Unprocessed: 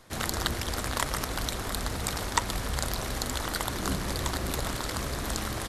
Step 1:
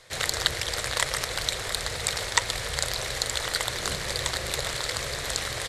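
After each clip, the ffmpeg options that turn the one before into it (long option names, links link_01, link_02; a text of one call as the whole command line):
ffmpeg -i in.wav -af "equalizer=frequency=125:width_type=o:width=1:gain=7,equalizer=frequency=250:width_type=o:width=1:gain=-11,equalizer=frequency=500:width_type=o:width=1:gain=12,equalizer=frequency=2000:width_type=o:width=1:gain=11,equalizer=frequency=4000:width_type=o:width=1:gain=10,equalizer=frequency=8000:width_type=o:width=1:gain=10,volume=-6.5dB" out.wav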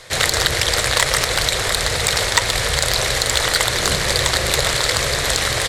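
ffmpeg -i in.wav -filter_complex "[0:a]asplit=2[link_01][link_02];[link_02]alimiter=limit=-11.5dB:level=0:latency=1:release=68,volume=2dB[link_03];[link_01][link_03]amix=inputs=2:normalize=0,acontrast=60,volume=-1dB" out.wav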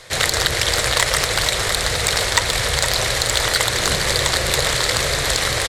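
ffmpeg -i in.wav -af "aecho=1:1:465:0.335,volume=-1dB" out.wav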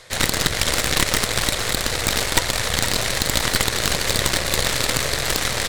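ffmpeg -i in.wav -af "areverse,acompressor=mode=upward:threshold=-21dB:ratio=2.5,areverse,aeval=exprs='0.841*(cos(1*acos(clip(val(0)/0.841,-1,1)))-cos(1*PI/2))+0.422*(cos(4*acos(clip(val(0)/0.841,-1,1)))-cos(4*PI/2))':channel_layout=same,volume=-4.5dB" out.wav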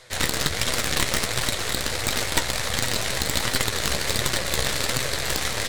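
ffmpeg -i in.wav -af "flanger=delay=7.7:depth=7.8:regen=45:speed=1.4:shape=sinusoidal" out.wav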